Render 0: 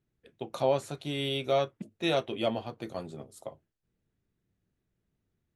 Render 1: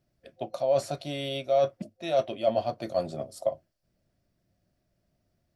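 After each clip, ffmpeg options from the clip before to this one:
ffmpeg -i in.wav -af "areverse,acompressor=threshold=-35dB:ratio=10,areverse,superequalizer=7b=0.708:8b=3.55:14b=2.24,volume=5dB" out.wav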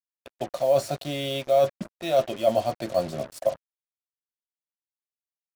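ffmpeg -i in.wav -af "acrusher=bits=6:mix=0:aa=0.5,volume=3.5dB" out.wav

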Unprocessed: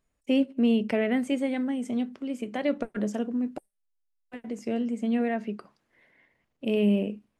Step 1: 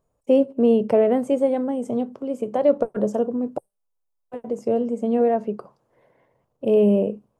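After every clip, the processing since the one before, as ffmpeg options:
ffmpeg -i in.wav -af "equalizer=frequency=125:width_type=o:width=1:gain=10,equalizer=frequency=250:width_type=o:width=1:gain=-3,equalizer=frequency=500:width_type=o:width=1:gain=11,equalizer=frequency=1000:width_type=o:width=1:gain=8,equalizer=frequency=2000:width_type=o:width=1:gain=-11,equalizer=frequency=4000:width_type=o:width=1:gain=-5,volume=1dB" out.wav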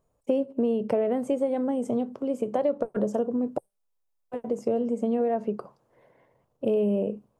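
ffmpeg -i in.wav -af "acompressor=threshold=-22dB:ratio=5" out.wav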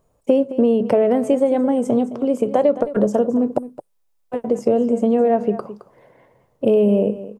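ffmpeg -i in.wav -af "aecho=1:1:216:0.188,volume=9dB" out.wav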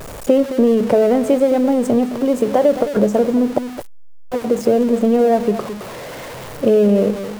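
ffmpeg -i in.wav -af "aeval=exprs='val(0)+0.5*0.0422*sgn(val(0))':channel_layout=same,volume=1.5dB" out.wav

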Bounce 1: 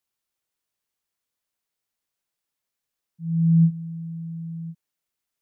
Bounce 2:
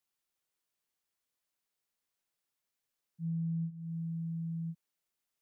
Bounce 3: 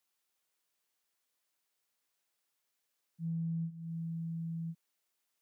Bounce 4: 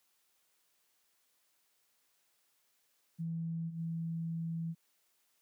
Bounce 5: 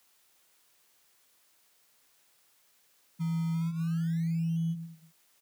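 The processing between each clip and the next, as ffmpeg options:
ffmpeg -i in.wav -af "equalizer=frequency=68:width_type=o:width=1.1:gain=-5.5,acompressor=threshold=-30dB:ratio=12,volume=-3dB" out.wav
ffmpeg -i in.wav -af "lowshelf=frequency=200:gain=-10,volume=4.5dB" out.wav
ffmpeg -i in.wav -af "alimiter=level_in=18dB:limit=-24dB:level=0:latency=1:release=145,volume=-18dB,volume=7.5dB" out.wav
ffmpeg -i in.wav -filter_complex "[0:a]acrossover=split=140|170|240[link_01][link_02][link_03][link_04];[link_01]acrusher=samples=27:mix=1:aa=0.000001:lfo=1:lforange=27:lforate=0.37[link_05];[link_02]aecho=1:1:120|210|277.5|328.1|366.1:0.631|0.398|0.251|0.158|0.1[link_06];[link_04]acrusher=bits=2:mode=log:mix=0:aa=0.000001[link_07];[link_05][link_06][link_03][link_07]amix=inputs=4:normalize=0,volume=7.5dB" out.wav

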